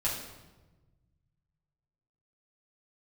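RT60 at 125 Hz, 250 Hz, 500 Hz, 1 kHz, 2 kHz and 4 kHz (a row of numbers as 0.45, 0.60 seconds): 2.5, 1.7, 1.3, 1.1, 0.95, 0.85 seconds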